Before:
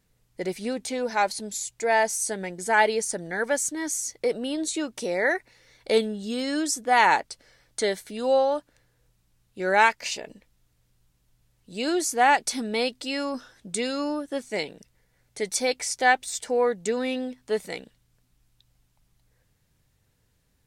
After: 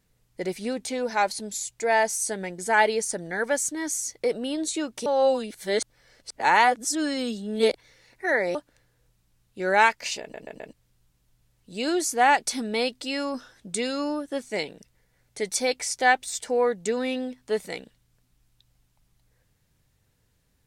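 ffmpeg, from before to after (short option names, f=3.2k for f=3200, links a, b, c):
-filter_complex "[0:a]asplit=7[a][b][c][d][e][f][g];[a]atrim=end=5.062[h];[b]atrim=start=5.058:end=8.552,asetpts=PTS-STARTPTS,areverse[i];[c]atrim=start=8.548:end=10.342[j];[d]atrim=start=10.208:end=10.342[k];[e]atrim=start=10.208:end=10.342[l];[f]atrim=start=10.208:end=10.342[m];[g]atrim=start=10.728[n];[h][i]acrossfade=d=0.004:c1=hsin:c2=hsin[o];[o][j]acrossfade=d=0.004:c1=hsin:c2=hsin[p];[p][k]acrossfade=d=0.004:c1=hsin:c2=hsin[q];[q][l]acrossfade=d=0.004:c1=hsin:c2=hsin[r];[r][m]acrossfade=d=0.004:c1=hsin:c2=hsin[s];[s][n]acrossfade=d=0.004:c1=hsin:c2=hsin"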